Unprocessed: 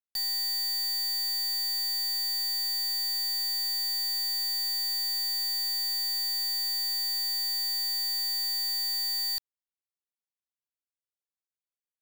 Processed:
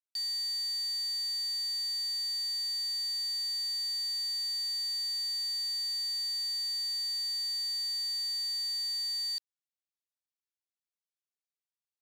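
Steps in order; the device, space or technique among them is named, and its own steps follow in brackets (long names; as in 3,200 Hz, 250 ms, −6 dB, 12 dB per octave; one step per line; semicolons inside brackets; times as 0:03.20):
piezo pickup straight into a mixer (low-pass filter 5,100 Hz 12 dB per octave; first difference)
level +3 dB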